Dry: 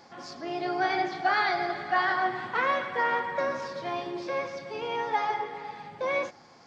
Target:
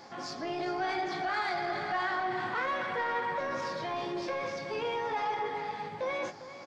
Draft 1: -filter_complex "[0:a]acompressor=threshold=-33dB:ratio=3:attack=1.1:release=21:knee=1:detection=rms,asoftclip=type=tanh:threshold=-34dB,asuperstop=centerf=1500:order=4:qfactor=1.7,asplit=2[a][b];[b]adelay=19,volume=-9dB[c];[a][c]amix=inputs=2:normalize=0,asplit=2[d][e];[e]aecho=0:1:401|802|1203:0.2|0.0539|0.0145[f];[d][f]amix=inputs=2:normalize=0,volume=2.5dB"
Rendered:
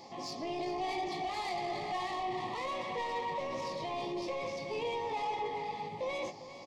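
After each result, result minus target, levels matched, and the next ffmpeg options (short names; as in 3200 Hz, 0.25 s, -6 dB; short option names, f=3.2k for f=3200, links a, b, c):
soft clip: distortion +9 dB; 2000 Hz band -5.0 dB
-filter_complex "[0:a]acompressor=threshold=-33dB:ratio=3:attack=1.1:release=21:knee=1:detection=rms,asoftclip=type=tanh:threshold=-27dB,asuperstop=centerf=1500:order=4:qfactor=1.7,asplit=2[a][b];[b]adelay=19,volume=-9dB[c];[a][c]amix=inputs=2:normalize=0,asplit=2[d][e];[e]aecho=0:1:401|802|1203:0.2|0.0539|0.0145[f];[d][f]amix=inputs=2:normalize=0,volume=2.5dB"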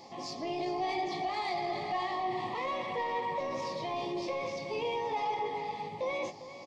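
2000 Hz band -5.0 dB
-filter_complex "[0:a]acompressor=threshold=-33dB:ratio=3:attack=1.1:release=21:knee=1:detection=rms,asoftclip=type=tanh:threshold=-27dB,asplit=2[a][b];[b]adelay=19,volume=-9dB[c];[a][c]amix=inputs=2:normalize=0,asplit=2[d][e];[e]aecho=0:1:401|802|1203:0.2|0.0539|0.0145[f];[d][f]amix=inputs=2:normalize=0,volume=2.5dB"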